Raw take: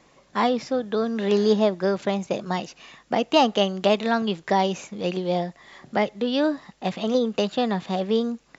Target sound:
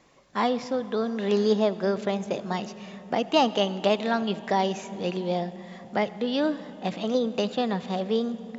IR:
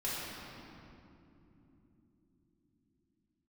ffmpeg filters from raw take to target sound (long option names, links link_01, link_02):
-filter_complex "[0:a]asplit=2[link_01][link_02];[1:a]atrim=start_sample=2205,asetrate=29988,aresample=44100,adelay=78[link_03];[link_02][link_03]afir=irnorm=-1:irlink=0,volume=-23dB[link_04];[link_01][link_04]amix=inputs=2:normalize=0,volume=-3dB"